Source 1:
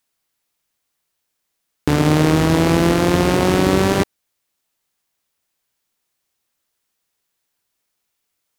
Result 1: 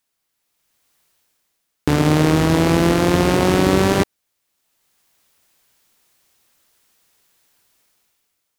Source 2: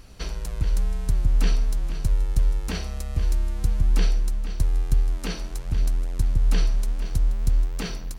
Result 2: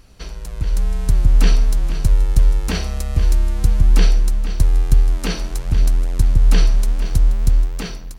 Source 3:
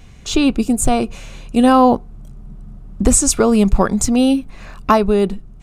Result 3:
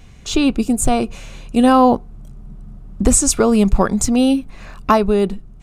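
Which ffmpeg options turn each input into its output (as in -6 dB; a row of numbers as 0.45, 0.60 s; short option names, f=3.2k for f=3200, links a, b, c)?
-af "dynaudnorm=f=170:g=9:m=13.5dB,volume=-1dB"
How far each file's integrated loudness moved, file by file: -0.5, +7.5, -0.5 LU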